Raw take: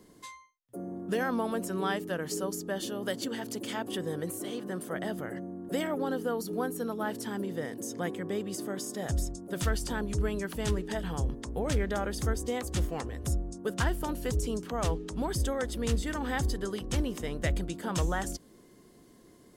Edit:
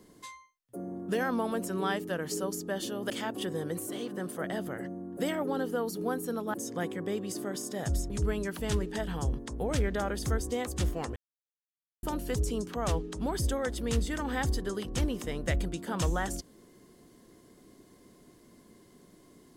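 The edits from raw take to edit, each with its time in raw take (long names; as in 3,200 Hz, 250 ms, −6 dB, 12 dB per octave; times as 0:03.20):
0:03.10–0:03.62: remove
0:07.06–0:07.77: remove
0:09.33–0:10.06: remove
0:13.12–0:13.99: silence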